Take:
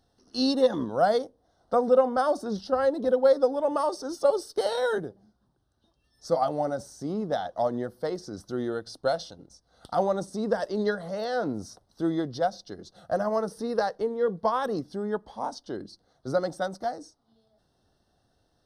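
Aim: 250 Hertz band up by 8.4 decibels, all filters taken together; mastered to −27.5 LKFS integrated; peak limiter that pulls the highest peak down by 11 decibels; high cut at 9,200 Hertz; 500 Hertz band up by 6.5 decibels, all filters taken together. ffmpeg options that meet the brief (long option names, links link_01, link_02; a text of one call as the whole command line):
ffmpeg -i in.wav -af "lowpass=9200,equalizer=frequency=250:width_type=o:gain=8.5,equalizer=frequency=500:width_type=o:gain=5.5,volume=-3dB,alimiter=limit=-17.5dB:level=0:latency=1" out.wav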